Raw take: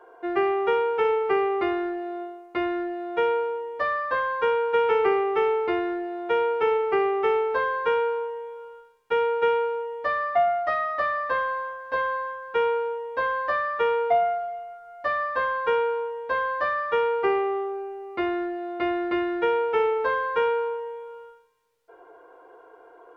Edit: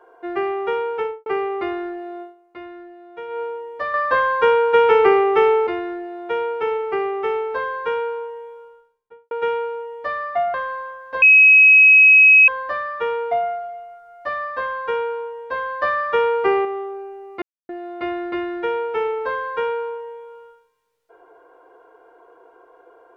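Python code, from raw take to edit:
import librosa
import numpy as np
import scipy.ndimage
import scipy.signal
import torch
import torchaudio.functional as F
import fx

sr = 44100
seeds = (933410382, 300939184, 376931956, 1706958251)

y = fx.studio_fade_out(x, sr, start_s=0.96, length_s=0.3)
y = fx.studio_fade_out(y, sr, start_s=8.44, length_s=0.87)
y = fx.edit(y, sr, fx.fade_down_up(start_s=2.21, length_s=1.21, db=-10.5, fade_s=0.14),
    fx.clip_gain(start_s=3.94, length_s=1.73, db=7.5),
    fx.cut(start_s=10.54, length_s=0.79),
    fx.bleep(start_s=12.01, length_s=1.26, hz=2550.0, db=-6.5),
    fx.clip_gain(start_s=16.61, length_s=0.83, db=5.0),
    fx.silence(start_s=18.21, length_s=0.27), tone=tone)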